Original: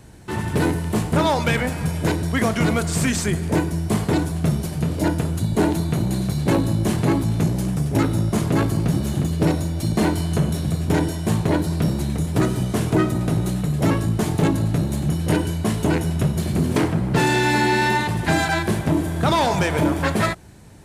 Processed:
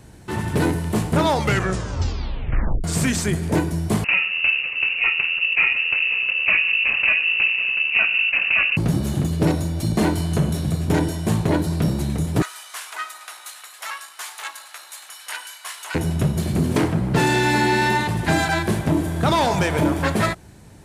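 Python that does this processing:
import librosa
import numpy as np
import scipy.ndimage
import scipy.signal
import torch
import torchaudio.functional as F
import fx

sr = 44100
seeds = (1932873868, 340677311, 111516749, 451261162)

y = fx.freq_invert(x, sr, carrier_hz=2800, at=(4.04, 8.77))
y = fx.highpass(y, sr, hz=1100.0, slope=24, at=(12.42, 15.95))
y = fx.edit(y, sr, fx.tape_stop(start_s=1.32, length_s=1.52), tone=tone)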